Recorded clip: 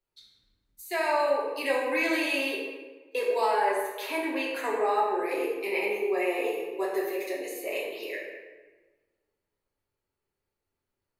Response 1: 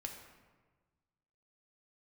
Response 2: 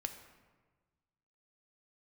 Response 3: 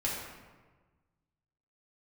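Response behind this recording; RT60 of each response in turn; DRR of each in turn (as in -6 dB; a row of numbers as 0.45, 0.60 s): 3; 1.4, 1.4, 1.4 s; 2.0, 6.0, -6.0 dB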